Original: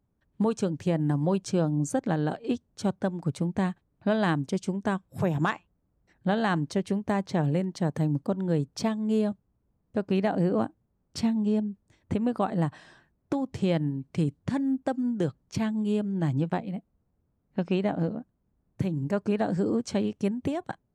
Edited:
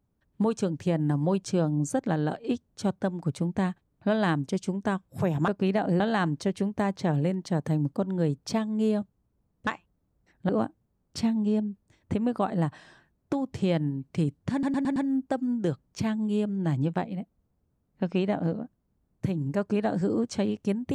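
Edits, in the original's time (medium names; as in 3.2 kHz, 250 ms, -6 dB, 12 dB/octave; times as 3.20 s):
5.48–6.30 s: swap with 9.97–10.49 s
14.52 s: stutter 0.11 s, 5 plays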